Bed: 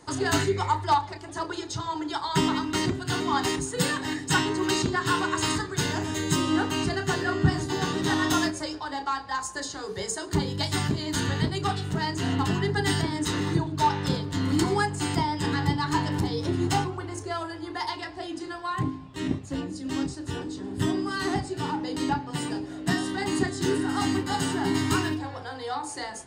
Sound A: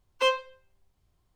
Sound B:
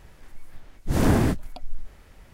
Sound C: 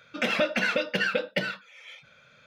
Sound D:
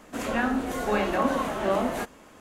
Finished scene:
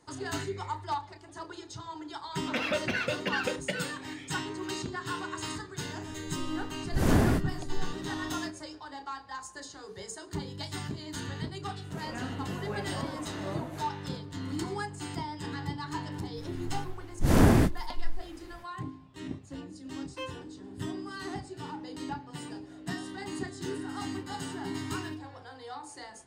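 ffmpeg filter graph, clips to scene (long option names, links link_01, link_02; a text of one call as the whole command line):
ffmpeg -i bed.wav -i cue0.wav -i cue1.wav -i cue2.wav -i cue3.wav -filter_complex "[2:a]asplit=2[link_01][link_02];[0:a]volume=-10.5dB[link_03];[3:a]atrim=end=2.46,asetpts=PTS-STARTPTS,volume=-5.5dB,afade=type=in:duration=0.004:curve=hsin,afade=type=out:start_time=2.456:duration=0.004:curve=hsin,adelay=2320[link_04];[link_01]atrim=end=2.33,asetpts=PTS-STARTPTS,volume=-4dB,afade=type=in:duration=0.004:curve=hsin,afade=type=out:start_time=2.326:duration=0.004:curve=hsin,adelay=6060[link_05];[4:a]atrim=end=2.4,asetpts=PTS-STARTPTS,volume=-14.5dB,afade=type=in:duration=0.004:curve=hsin,afade=type=out:start_time=2.396:duration=0.004:curve=hsin,adelay=519498S[link_06];[link_02]atrim=end=2.33,asetpts=PTS-STARTPTS,volume=-0.5dB,afade=type=in:duration=0.05,afade=type=out:start_time=2.28:duration=0.05,adelay=16340[link_07];[1:a]atrim=end=1.35,asetpts=PTS-STARTPTS,volume=-15.5dB,afade=type=in:duration=0.004:curve=hsin,afade=type=out:start_time=1.346:duration=0.004:curve=hsin,adelay=19960[link_08];[link_03][link_04][link_05][link_06][link_07][link_08]amix=inputs=6:normalize=0" out.wav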